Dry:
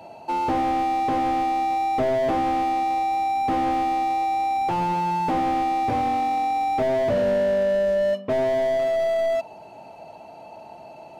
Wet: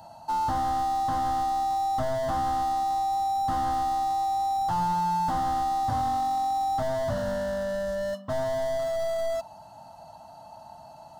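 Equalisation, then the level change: peaking EQ 420 Hz -9 dB 2.9 oct; static phaser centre 1 kHz, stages 4; +4.5 dB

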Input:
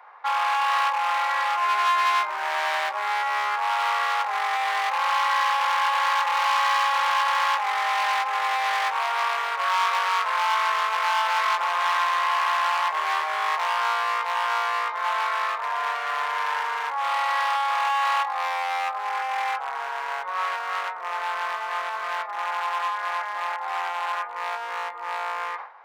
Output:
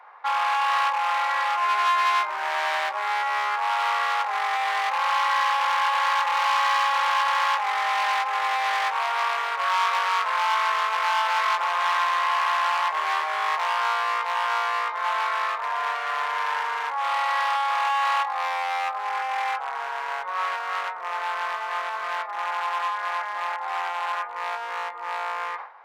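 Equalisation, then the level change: treble shelf 9.9 kHz -4.5 dB; 0.0 dB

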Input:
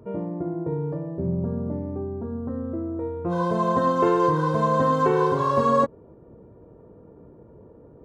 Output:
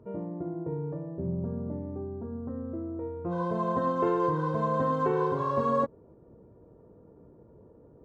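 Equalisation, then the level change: treble shelf 3.3 kHz -10.5 dB; -6.0 dB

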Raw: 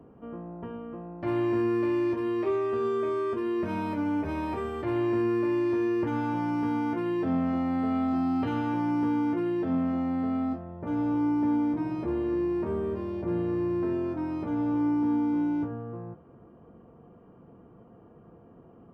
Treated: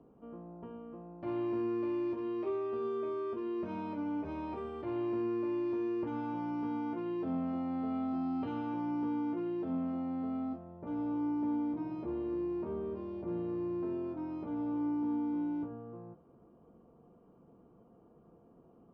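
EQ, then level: distance through air 130 m; peaking EQ 99 Hz -7 dB 0.86 oct; peaking EQ 1.8 kHz -8 dB 0.57 oct; -7.0 dB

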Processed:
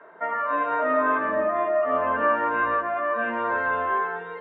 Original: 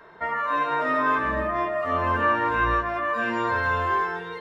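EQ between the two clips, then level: distance through air 390 m; cabinet simulation 230–3500 Hz, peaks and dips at 280 Hz +4 dB, 630 Hz +7 dB, 1.4 kHz +4 dB; hum notches 50/100/150/200/250/300/350 Hz; 0.0 dB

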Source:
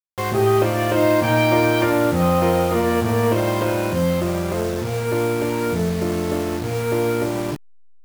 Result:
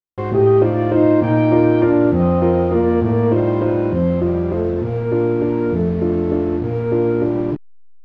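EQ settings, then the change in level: tape spacing loss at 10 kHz 40 dB; bass shelf 140 Hz +5.5 dB; peaking EQ 330 Hz +7.5 dB 1 oct; 0.0 dB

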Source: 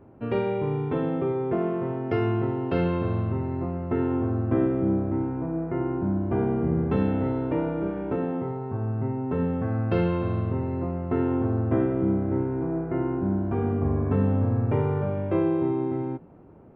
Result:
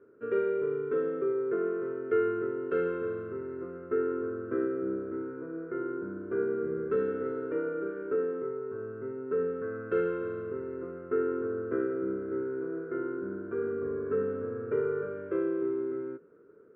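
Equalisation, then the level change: two resonant band-passes 790 Hz, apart 1.7 oct; +4.0 dB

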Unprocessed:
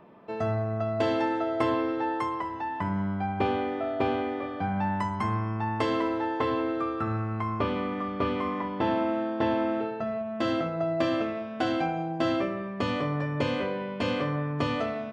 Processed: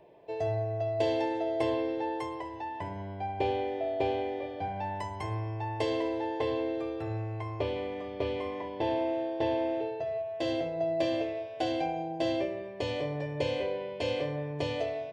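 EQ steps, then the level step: hum notches 50/100 Hz; static phaser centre 530 Hz, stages 4; 0.0 dB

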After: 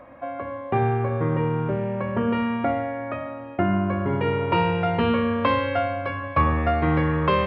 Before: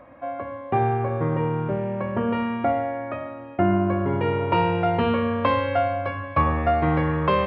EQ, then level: hum notches 50/100/150/200/250/300/350 Hz; dynamic bell 720 Hz, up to -5 dB, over -33 dBFS, Q 1.5; +2.0 dB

